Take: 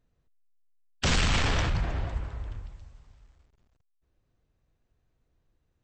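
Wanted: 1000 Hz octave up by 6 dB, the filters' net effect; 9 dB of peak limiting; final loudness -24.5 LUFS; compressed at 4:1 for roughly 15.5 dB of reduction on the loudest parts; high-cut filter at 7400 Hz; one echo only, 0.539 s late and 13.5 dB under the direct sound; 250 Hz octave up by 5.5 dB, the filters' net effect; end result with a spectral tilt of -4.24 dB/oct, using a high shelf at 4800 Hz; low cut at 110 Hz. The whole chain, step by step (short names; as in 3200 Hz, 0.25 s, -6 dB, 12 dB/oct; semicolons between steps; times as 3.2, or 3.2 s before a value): HPF 110 Hz; LPF 7400 Hz; bell 250 Hz +7.5 dB; bell 1000 Hz +7.5 dB; high shelf 4800 Hz -5.5 dB; compressor 4:1, threshold -39 dBFS; limiter -32 dBFS; echo 0.539 s -13.5 dB; gain +19 dB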